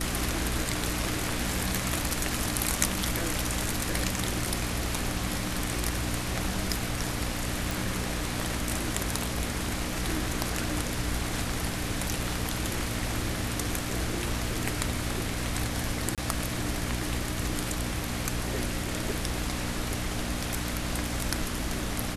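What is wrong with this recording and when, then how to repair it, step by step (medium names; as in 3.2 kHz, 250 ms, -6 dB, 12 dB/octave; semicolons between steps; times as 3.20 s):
hum 60 Hz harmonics 5 -35 dBFS
7.71 s: pop
16.15–16.18 s: dropout 27 ms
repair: de-click; de-hum 60 Hz, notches 5; interpolate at 16.15 s, 27 ms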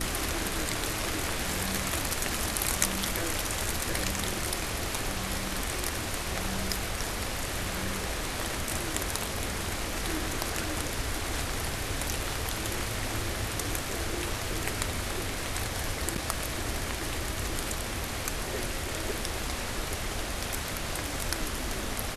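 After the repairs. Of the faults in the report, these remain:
nothing left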